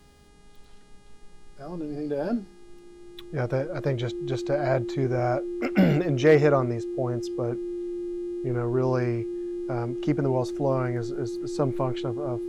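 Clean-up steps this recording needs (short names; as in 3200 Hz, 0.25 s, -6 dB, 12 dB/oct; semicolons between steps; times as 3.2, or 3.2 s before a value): clip repair -9 dBFS; de-hum 409.9 Hz, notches 27; notch 350 Hz, Q 30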